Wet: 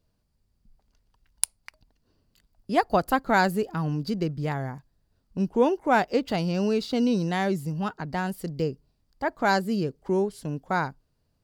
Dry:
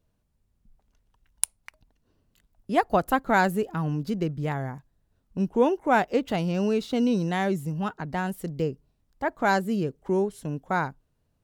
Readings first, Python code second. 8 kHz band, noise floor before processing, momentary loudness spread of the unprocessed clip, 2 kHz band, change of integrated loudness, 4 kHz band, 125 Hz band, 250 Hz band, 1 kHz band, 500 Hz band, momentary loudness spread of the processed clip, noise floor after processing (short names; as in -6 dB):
0.0 dB, -73 dBFS, 9 LU, 0.0 dB, 0.0 dB, +3.0 dB, 0.0 dB, 0.0 dB, 0.0 dB, 0.0 dB, 9 LU, -72 dBFS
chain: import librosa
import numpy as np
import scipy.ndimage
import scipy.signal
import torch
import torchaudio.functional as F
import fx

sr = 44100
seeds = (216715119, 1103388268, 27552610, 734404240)

y = fx.peak_eq(x, sr, hz=4700.0, db=11.0, octaves=0.25)